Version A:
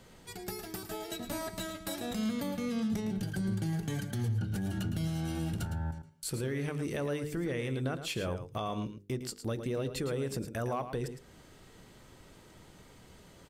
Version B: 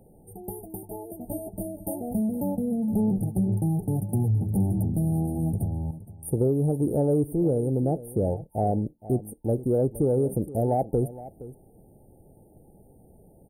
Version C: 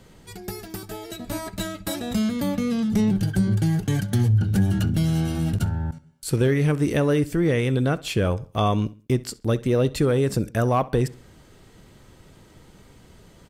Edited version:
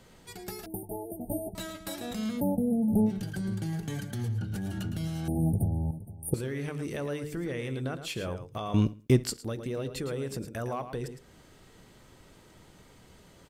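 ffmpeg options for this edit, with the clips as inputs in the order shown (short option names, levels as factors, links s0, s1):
-filter_complex "[1:a]asplit=3[s0][s1][s2];[0:a]asplit=5[s3][s4][s5][s6][s7];[s3]atrim=end=0.662[s8];[s0]atrim=start=0.658:end=1.552[s9];[s4]atrim=start=1.548:end=2.42[s10];[s1]atrim=start=2.36:end=3.11[s11];[s5]atrim=start=3.05:end=5.282[s12];[s2]atrim=start=5.278:end=6.342[s13];[s6]atrim=start=6.338:end=8.742[s14];[2:a]atrim=start=8.738:end=9.372[s15];[s7]atrim=start=9.368[s16];[s8][s9]acrossfade=d=0.004:c1=hsin:c2=hsin[s17];[s17][s10]acrossfade=d=0.004:c1=hsin:c2=hsin[s18];[s18][s11]acrossfade=d=0.06:c1=tri:c2=tri[s19];[s19][s12]acrossfade=d=0.06:c1=tri:c2=tri[s20];[s20][s13]acrossfade=d=0.004:c1=hsin:c2=hsin[s21];[s21][s14]acrossfade=d=0.004:c1=hsin:c2=hsin[s22];[s22][s15]acrossfade=d=0.004:c1=hsin:c2=hsin[s23];[s23][s16]acrossfade=d=0.004:c1=hsin:c2=hsin"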